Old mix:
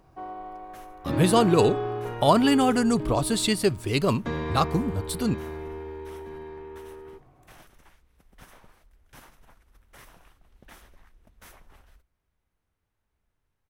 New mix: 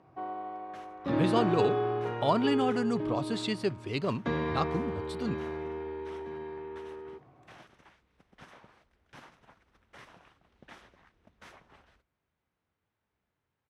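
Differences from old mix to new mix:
speech −7.5 dB
master: add band-pass filter 110–4,600 Hz

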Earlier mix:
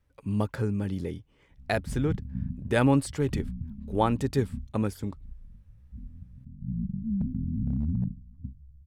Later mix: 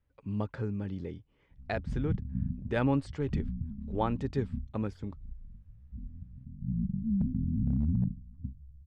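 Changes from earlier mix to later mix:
speech −5.5 dB
master: add high-frequency loss of the air 140 metres

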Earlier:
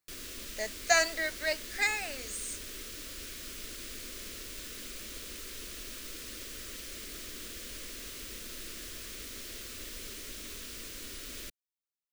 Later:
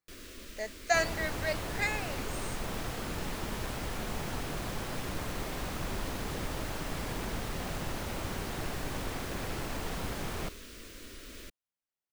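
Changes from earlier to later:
second sound: unmuted
master: add high-shelf EQ 2,700 Hz −9 dB

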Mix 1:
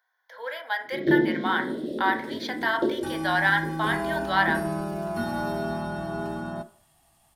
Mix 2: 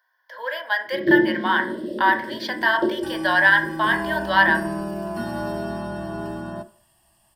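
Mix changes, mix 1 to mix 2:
speech +4.0 dB
master: add EQ curve with evenly spaced ripples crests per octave 1.3, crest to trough 9 dB

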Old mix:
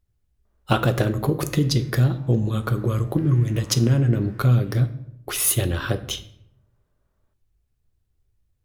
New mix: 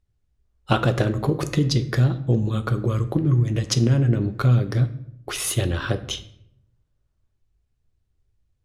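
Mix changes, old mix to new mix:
background −12.0 dB
master: add low-pass filter 7,900 Hz 12 dB per octave

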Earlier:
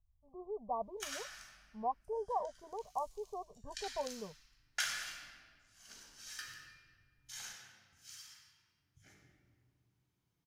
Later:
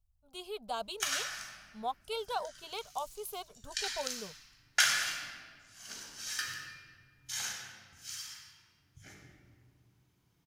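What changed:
speech: remove linear-phase brick-wall low-pass 1,200 Hz
background +10.0 dB

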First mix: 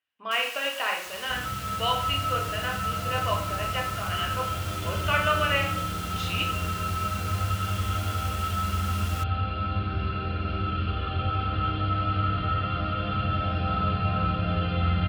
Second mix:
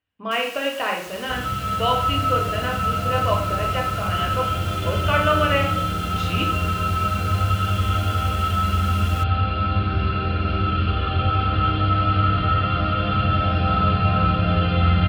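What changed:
speech: remove high-pass filter 1,300 Hz 6 dB per octave
second sound +7.0 dB

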